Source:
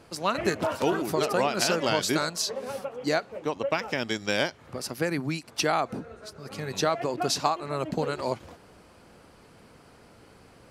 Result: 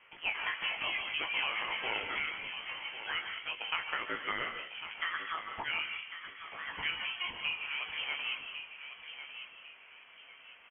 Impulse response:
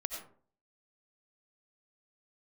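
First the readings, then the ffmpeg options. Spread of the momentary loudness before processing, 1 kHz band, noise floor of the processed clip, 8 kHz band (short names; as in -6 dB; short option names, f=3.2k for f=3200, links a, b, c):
10 LU, -11.0 dB, -57 dBFS, under -40 dB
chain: -filter_complex "[0:a]highpass=1.2k,acompressor=threshold=-31dB:ratio=6,asplit=2[a][b];[b]adelay=1100,lowpass=f=2.4k:p=1,volume=-9dB,asplit=2[c][d];[d]adelay=1100,lowpass=f=2.4k:p=1,volume=0.36,asplit=2[e][f];[f]adelay=1100,lowpass=f=2.4k:p=1,volume=0.36,asplit=2[g][h];[h]adelay=1100,lowpass=f=2.4k:p=1,volume=0.36[i];[a][c][e][g][i]amix=inputs=5:normalize=0,asplit=2[j][k];[1:a]atrim=start_sample=2205,asetrate=28665,aresample=44100,adelay=19[l];[k][l]afir=irnorm=-1:irlink=0,volume=-5dB[m];[j][m]amix=inputs=2:normalize=0,lowpass=f=3.1k:t=q:w=0.5098,lowpass=f=3.1k:t=q:w=0.6013,lowpass=f=3.1k:t=q:w=0.9,lowpass=f=3.1k:t=q:w=2.563,afreqshift=-3600"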